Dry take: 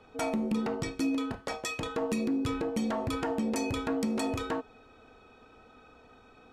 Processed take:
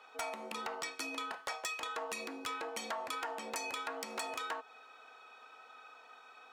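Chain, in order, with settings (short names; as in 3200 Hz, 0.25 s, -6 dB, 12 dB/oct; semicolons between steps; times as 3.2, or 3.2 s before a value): Chebyshev high-pass 1000 Hz, order 2; compressor 5:1, threshold -40 dBFS, peak gain reduction 8 dB; wavefolder -32.5 dBFS; gain +4 dB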